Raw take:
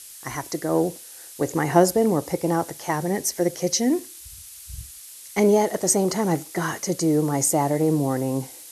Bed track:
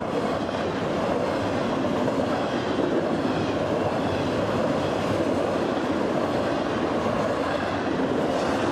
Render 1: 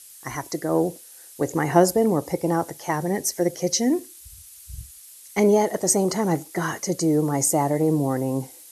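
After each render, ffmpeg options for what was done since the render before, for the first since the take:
-af "afftdn=nr=6:nf=-43"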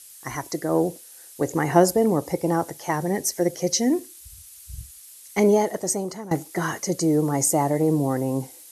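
-filter_complex "[0:a]asplit=2[s0][s1];[s0]atrim=end=6.31,asetpts=PTS-STARTPTS,afade=t=out:st=5.5:d=0.81:silence=0.149624[s2];[s1]atrim=start=6.31,asetpts=PTS-STARTPTS,afade=t=in:d=0.004:c=hsin:silence=0.149624[s3];[s2][s3]concat=n=2:v=0:a=1"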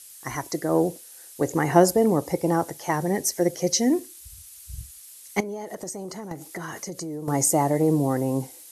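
-filter_complex "[0:a]asettb=1/sr,asplit=3[s0][s1][s2];[s0]atrim=end=5.404[s3];[s1]atrim=start=5.4:end=7.28,asetpts=PTS-STARTPTS,afade=t=in:d=0.004:c=qsin,afade=t=out:st=1.876:d=0.004:c=qsin,acompressor=threshold=0.0316:ratio=8:attack=3.2:release=140:knee=1:detection=peak[s4];[s2]atrim=start=7.276[s5];[s3][s4]acrossfade=d=0.004:c1=hsin:c2=qsin[s6];[s6][s5]acrossfade=d=0.004:c1=qsin:c2=hsin"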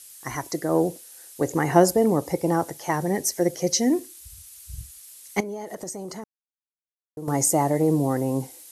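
-filter_complex "[0:a]asplit=3[s0][s1][s2];[s0]atrim=end=6.24,asetpts=PTS-STARTPTS,afade=t=out:st=6.236:d=0.004:c=hsin[s3];[s1]atrim=start=6.24:end=7.17,asetpts=PTS-STARTPTS,volume=0[s4];[s2]atrim=start=7.17,asetpts=PTS-STARTPTS,afade=t=in:d=0.004:c=hsin[s5];[s3][s4][s5]concat=n=3:v=0:a=1"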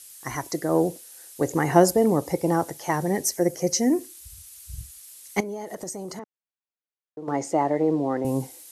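-filter_complex "[0:a]asettb=1/sr,asplit=3[s0][s1][s2];[s0]atrim=end=3.364[s3];[s1]atrim=start=3.36:end=4,asetpts=PTS-STARTPTS,afade=t=in:d=0.004:c=qsin,afade=t=out:st=0.636:d=0.004:c=qsin,equalizer=f=3600:t=o:w=0.69:g=-8.5[s4];[s2]atrim=start=3.996[s5];[s3][s4]acrossfade=d=0.004:c1=hsin:c2=qsin[s6];[s6][s5]acrossfade=d=0.004:c1=qsin:c2=hsin,asettb=1/sr,asplit=3[s7][s8][s9];[s7]atrim=end=6.194[s10];[s8]atrim=start=6.19:end=8.25,asetpts=PTS-STARTPTS,afade=t=in:d=0.004:c=qsin,afade=t=out:st=2.056:d=0.004:c=qsin,highpass=240,lowpass=3200[s11];[s9]atrim=start=8.246[s12];[s10][s11]acrossfade=d=0.004:c1=hsin:c2=qsin[s13];[s13][s12]acrossfade=d=0.004:c1=qsin:c2=hsin"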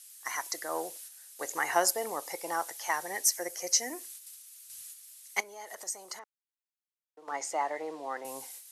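-af "agate=range=0.501:threshold=0.00708:ratio=16:detection=peak,highpass=1100"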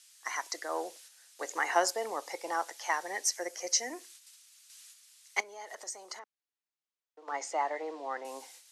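-filter_complex "[0:a]highpass=160,acrossover=split=210 7500:gain=0.0794 1 0.126[s0][s1][s2];[s0][s1][s2]amix=inputs=3:normalize=0"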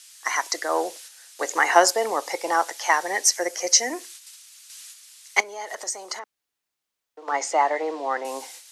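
-af "volume=3.55"

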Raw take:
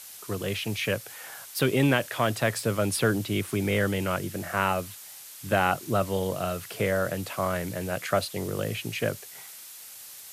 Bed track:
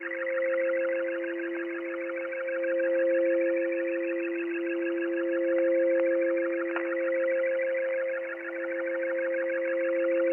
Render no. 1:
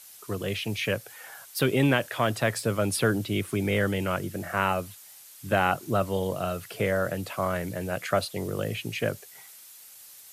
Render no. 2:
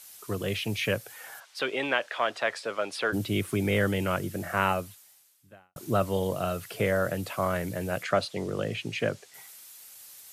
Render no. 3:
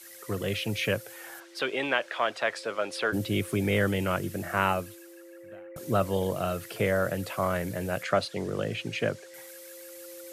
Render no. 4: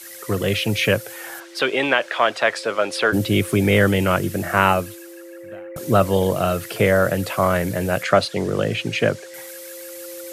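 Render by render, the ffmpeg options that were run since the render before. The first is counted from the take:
-af "afftdn=nr=6:nf=-45"
-filter_complex "[0:a]asplit=3[s0][s1][s2];[s0]afade=t=out:st=1.39:d=0.02[s3];[s1]highpass=550,lowpass=4600,afade=t=in:st=1.39:d=0.02,afade=t=out:st=3.12:d=0.02[s4];[s2]afade=t=in:st=3.12:d=0.02[s5];[s3][s4][s5]amix=inputs=3:normalize=0,asettb=1/sr,asplit=3[s6][s7][s8];[s6]atrim=end=8.034[s9];[s7]atrim=start=8.03:end=9.34,asetpts=PTS-STARTPTS,afade=t=in:d=0.004:c=qsin,afade=t=out:st=1.306:d=0.004:c=qsin,highpass=110,lowpass=6700[s10];[s8]atrim=start=9.336[s11];[s9][s10]acrossfade=d=0.004:c1=hsin:c2=qsin[s12];[s12][s11]acrossfade=d=0.004:c1=qsin:c2=hsin,asplit=2[s13][s14];[s13]atrim=end=5.76,asetpts=PTS-STARTPTS,afade=t=out:st=4.7:d=1.06:c=qua[s15];[s14]atrim=start=5.76,asetpts=PTS-STARTPTS,afade=t=in:d=0.004:c=hsin[s16];[s15][s16]concat=n=2:v=0:a=1"
-filter_complex "[1:a]volume=0.0944[s0];[0:a][s0]amix=inputs=2:normalize=0"
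-af "volume=2.99,alimiter=limit=0.794:level=0:latency=1"

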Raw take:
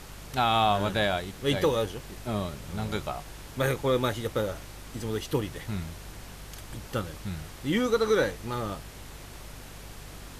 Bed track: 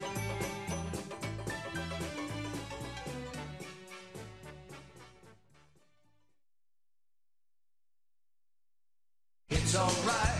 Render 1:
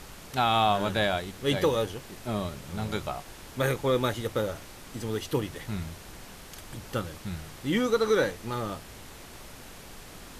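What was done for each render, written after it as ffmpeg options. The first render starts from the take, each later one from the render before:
-af "bandreject=f=50:t=h:w=4,bandreject=f=100:t=h:w=4,bandreject=f=150:t=h:w=4"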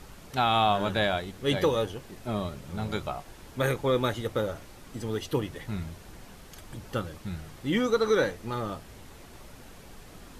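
-af "afftdn=nr=6:nf=-46"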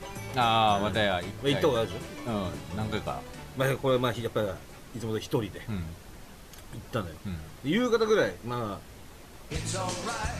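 -filter_complex "[1:a]volume=0.75[s0];[0:a][s0]amix=inputs=2:normalize=0"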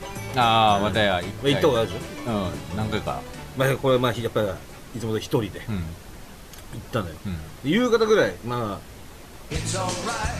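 -af "volume=1.88"

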